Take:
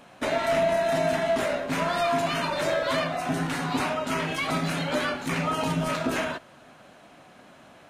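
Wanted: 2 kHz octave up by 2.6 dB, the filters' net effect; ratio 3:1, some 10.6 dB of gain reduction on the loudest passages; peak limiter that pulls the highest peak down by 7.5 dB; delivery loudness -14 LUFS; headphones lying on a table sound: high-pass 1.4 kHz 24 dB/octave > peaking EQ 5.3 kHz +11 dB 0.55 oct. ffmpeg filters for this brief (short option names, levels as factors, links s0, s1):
-af "equalizer=f=2000:t=o:g=3.5,acompressor=threshold=0.0178:ratio=3,alimiter=level_in=2:limit=0.0631:level=0:latency=1,volume=0.501,highpass=f=1400:w=0.5412,highpass=f=1400:w=1.3066,equalizer=f=5300:t=o:w=0.55:g=11,volume=22.4"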